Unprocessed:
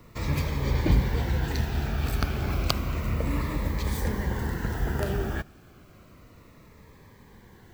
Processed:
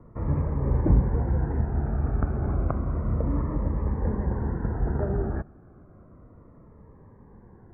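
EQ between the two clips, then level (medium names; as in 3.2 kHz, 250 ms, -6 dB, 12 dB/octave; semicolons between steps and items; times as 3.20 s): Bessel low-pass 880 Hz, order 8; +2.0 dB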